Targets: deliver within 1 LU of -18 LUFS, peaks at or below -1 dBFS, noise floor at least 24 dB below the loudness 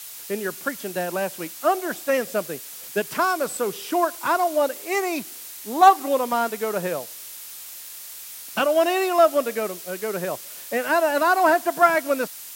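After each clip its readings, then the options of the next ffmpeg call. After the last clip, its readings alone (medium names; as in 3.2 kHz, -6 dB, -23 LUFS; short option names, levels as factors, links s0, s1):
noise floor -39 dBFS; noise floor target -47 dBFS; loudness -22.5 LUFS; peak level -4.0 dBFS; loudness target -18.0 LUFS
-> -af "afftdn=nr=8:nf=-39"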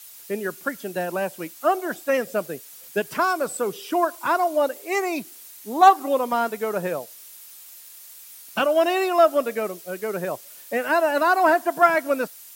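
noise floor -45 dBFS; noise floor target -47 dBFS
-> -af "afftdn=nr=6:nf=-45"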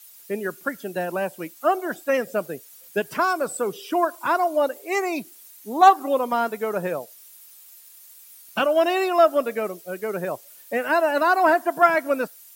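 noise floor -48 dBFS; loudness -23.0 LUFS; peak level -4.5 dBFS; loudness target -18.0 LUFS
-> -af "volume=1.78,alimiter=limit=0.891:level=0:latency=1"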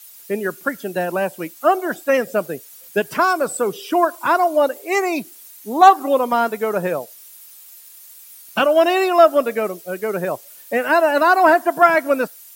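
loudness -18.0 LUFS; peak level -1.0 dBFS; noise floor -43 dBFS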